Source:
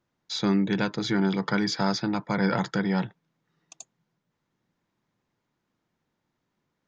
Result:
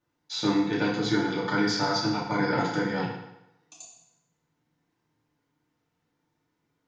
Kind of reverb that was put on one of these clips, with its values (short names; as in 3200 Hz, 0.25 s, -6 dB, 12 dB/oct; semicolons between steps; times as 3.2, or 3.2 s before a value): FDN reverb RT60 0.87 s, low-frequency decay 0.9×, high-frequency decay 0.9×, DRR -6.5 dB; gain -6 dB